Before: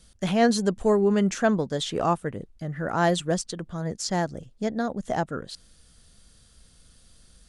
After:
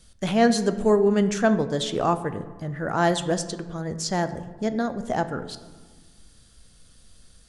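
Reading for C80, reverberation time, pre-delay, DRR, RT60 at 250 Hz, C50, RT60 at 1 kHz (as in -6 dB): 14.0 dB, 1.4 s, 3 ms, 10.0 dB, 1.9 s, 12.5 dB, 1.4 s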